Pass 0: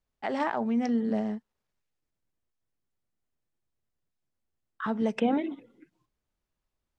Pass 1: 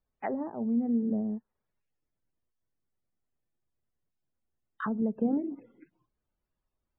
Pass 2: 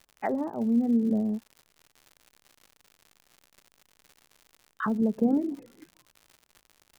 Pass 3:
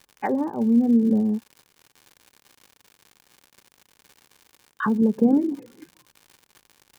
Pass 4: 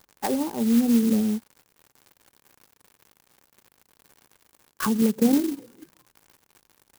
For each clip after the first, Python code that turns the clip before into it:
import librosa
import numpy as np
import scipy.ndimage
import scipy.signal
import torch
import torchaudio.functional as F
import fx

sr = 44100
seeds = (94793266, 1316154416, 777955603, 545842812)

y1 = fx.env_lowpass_down(x, sr, base_hz=390.0, full_db=-26.5)
y1 = fx.spec_topn(y1, sr, count=64)
y2 = fx.dmg_crackle(y1, sr, seeds[0], per_s=140.0, level_db=-45.0)
y2 = y2 * 10.0 ** (4.0 / 20.0)
y3 = fx.notch_comb(y2, sr, f0_hz=660.0)
y3 = y3 * 10.0 ** (6.0 / 20.0)
y4 = fx.clock_jitter(y3, sr, seeds[1], jitter_ms=0.087)
y4 = y4 * 10.0 ** (-1.5 / 20.0)